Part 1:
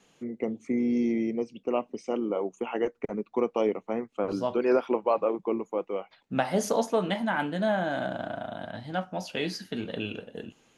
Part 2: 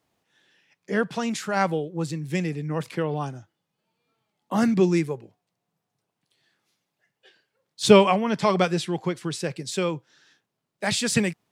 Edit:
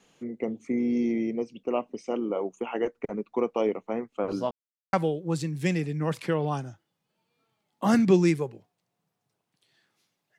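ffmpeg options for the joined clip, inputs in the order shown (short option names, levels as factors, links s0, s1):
-filter_complex "[0:a]apad=whole_dur=10.38,atrim=end=10.38,asplit=2[s0][s1];[s0]atrim=end=4.51,asetpts=PTS-STARTPTS,afade=t=out:st=4.506:d=0.004:c=hsin[s2];[s1]atrim=start=4.51:end=4.93,asetpts=PTS-STARTPTS,volume=0[s3];[1:a]atrim=start=1.62:end=7.07,asetpts=PTS-STARTPTS,afade=t=in:d=0.004:c=hsin[s4];[s2][s3][s4]concat=n=3:v=0:a=1"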